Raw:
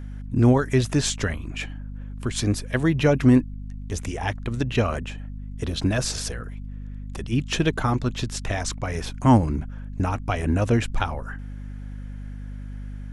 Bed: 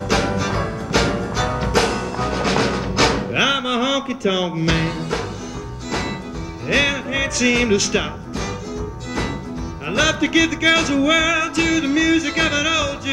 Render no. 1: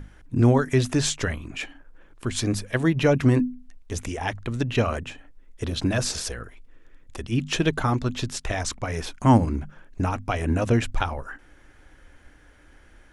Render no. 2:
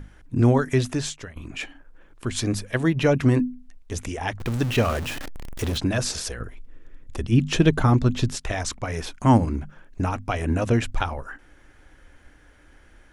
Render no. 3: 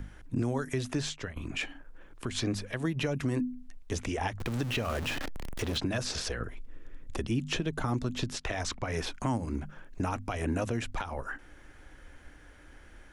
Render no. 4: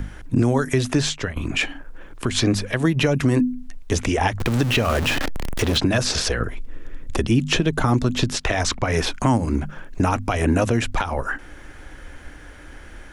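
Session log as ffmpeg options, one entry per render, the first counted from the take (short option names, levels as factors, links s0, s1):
-af "bandreject=f=50:t=h:w=6,bandreject=f=100:t=h:w=6,bandreject=f=150:t=h:w=6,bandreject=f=200:t=h:w=6,bandreject=f=250:t=h:w=6"
-filter_complex "[0:a]asettb=1/sr,asplit=3[s0][s1][s2];[s0]atrim=end=4.404[s3];[s1]atrim=start=4.4:end=5.78,asetpts=PTS-STARTPTS,afade=t=in:d=0.004:c=qsin,afade=t=out:st=1.376:d=0.004:c=qsin,aeval=exprs='val(0)+0.5*0.0398*sgn(val(0))':c=same[s4];[s2]atrim=start=5.776[s5];[s3][s4]acrossfade=d=0.004:c1=hsin:c2=qsin[s6];[s6][s5]acrossfade=d=0.004:c1=qsin:c2=hsin,asettb=1/sr,asplit=3[s7][s8][s9];[s7]atrim=end=6.404[s10];[s8]atrim=start=6.4:end=8.35,asetpts=PTS-STARTPTS,afade=t=in:d=0.004:c=qsin,afade=t=out:st=1.946:d=0.004:c=qsin,lowshelf=f=420:g=7.5[s11];[s9]atrim=start=8.346[s12];[s10][s11]acrossfade=d=0.004:c1=hsin:c2=qsin[s13];[s13][s12]acrossfade=d=0.004:c1=qsin:c2=hsin,asplit=2[s14][s15];[s14]atrim=end=1.36,asetpts=PTS-STARTPTS,afade=t=out:st=0.74:d=0.62:silence=0.0944061[s16];[s15]atrim=start=1.36,asetpts=PTS-STARTPTS,afade=t=in:d=0.004:c=hsin:silence=0.0944061[s17];[s16][s17]concat=n=2:v=0:a=1"
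-filter_complex "[0:a]acrossover=split=180|5700[s0][s1][s2];[s0]acompressor=threshold=0.0178:ratio=4[s3];[s1]acompressor=threshold=0.0355:ratio=4[s4];[s2]acompressor=threshold=0.00355:ratio=4[s5];[s3][s4][s5]amix=inputs=3:normalize=0,alimiter=limit=0.0944:level=0:latency=1:release=127"
-af "volume=3.98"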